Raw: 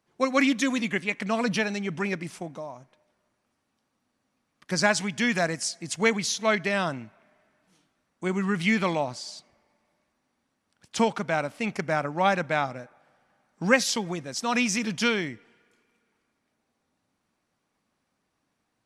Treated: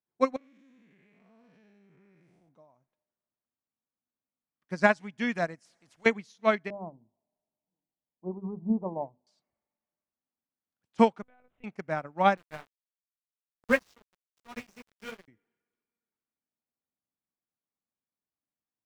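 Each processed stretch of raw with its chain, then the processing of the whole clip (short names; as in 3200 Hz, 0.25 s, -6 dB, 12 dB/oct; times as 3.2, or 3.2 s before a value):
0.36–2.49 time blur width 0.226 s + compressor 4:1, threshold -36 dBFS
5.65–6.06 compressor 2:1, threshold -30 dBFS + spectral compressor 2:1
6.7–9.27 steep low-pass 1000 Hz 72 dB/oct + notches 50/100/150/200/250/300/350/400/450 Hz
11.22–11.64 compressor 2.5:1, threshold -39 dBFS + monotone LPC vocoder at 8 kHz 250 Hz
12.37–15.28 notch 820 Hz, Q 6.9 + chorus 2.8 Hz, delay 15.5 ms, depth 4.1 ms + sample gate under -26 dBFS
whole clip: high shelf 3200 Hz -11.5 dB; upward expander 2.5:1, over -37 dBFS; gain +4 dB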